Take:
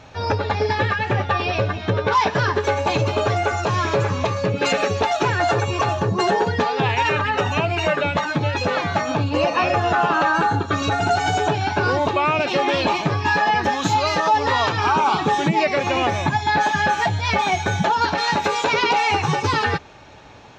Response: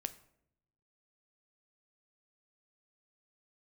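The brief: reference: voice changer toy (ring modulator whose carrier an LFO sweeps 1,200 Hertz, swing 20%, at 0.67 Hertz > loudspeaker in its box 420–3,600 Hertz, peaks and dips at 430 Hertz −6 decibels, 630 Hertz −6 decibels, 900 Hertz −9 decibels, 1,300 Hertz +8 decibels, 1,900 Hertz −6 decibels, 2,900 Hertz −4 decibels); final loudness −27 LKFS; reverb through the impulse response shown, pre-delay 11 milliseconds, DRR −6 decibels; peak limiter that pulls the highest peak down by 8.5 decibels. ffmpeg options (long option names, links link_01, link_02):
-filter_complex "[0:a]alimiter=limit=-17.5dB:level=0:latency=1,asplit=2[link_01][link_02];[1:a]atrim=start_sample=2205,adelay=11[link_03];[link_02][link_03]afir=irnorm=-1:irlink=0,volume=7.5dB[link_04];[link_01][link_04]amix=inputs=2:normalize=0,aeval=exprs='val(0)*sin(2*PI*1200*n/s+1200*0.2/0.67*sin(2*PI*0.67*n/s))':channel_layout=same,highpass=420,equalizer=frequency=430:width_type=q:width=4:gain=-6,equalizer=frequency=630:width_type=q:width=4:gain=-6,equalizer=frequency=900:width_type=q:width=4:gain=-9,equalizer=frequency=1300:width_type=q:width=4:gain=8,equalizer=frequency=1900:width_type=q:width=4:gain=-6,equalizer=frequency=2900:width_type=q:width=4:gain=-4,lowpass=frequency=3600:width=0.5412,lowpass=frequency=3600:width=1.3066,volume=-6dB"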